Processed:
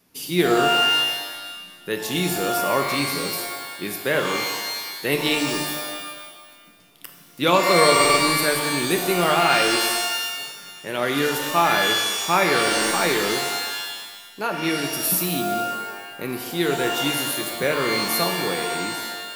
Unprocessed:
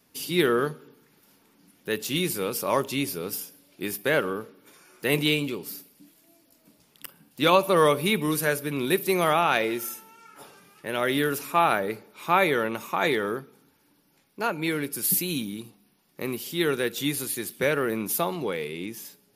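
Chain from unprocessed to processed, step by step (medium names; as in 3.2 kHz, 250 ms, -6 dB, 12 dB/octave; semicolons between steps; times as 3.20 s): buffer glitch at 7.91/12.63 s, samples 2048, times 5; pitch-shifted reverb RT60 1.4 s, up +12 st, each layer -2 dB, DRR 4.5 dB; trim +1 dB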